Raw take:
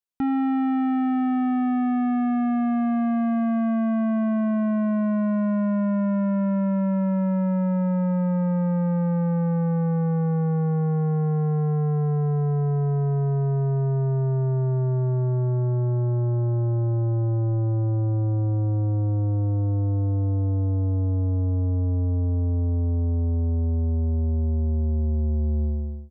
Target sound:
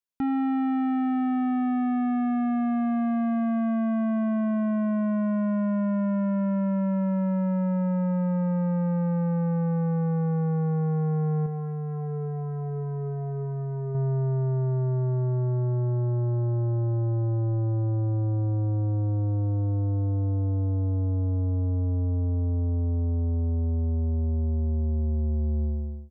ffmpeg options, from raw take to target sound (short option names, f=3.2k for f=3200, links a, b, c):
-filter_complex "[0:a]asettb=1/sr,asplit=3[a][b][c];[a]atrim=end=11.464[d];[b]atrim=start=11.46:end=13.95,asetpts=PTS-STARTPTS,afade=t=in:d=0.004:c=qsin,afade=t=out:st=2.486:d=0.004:c=qsin,flanger=delay=8.9:depth=1.2:regen=64:speed=1.4:shape=triangular[e];[c]atrim=start=13.946[f];[d][e]acrossfade=d=0.004:c1=hsin:c2=qsin[g];[g][f]acrossfade=d=0.004:c1=qsin:c2=hsin,volume=-2.5dB"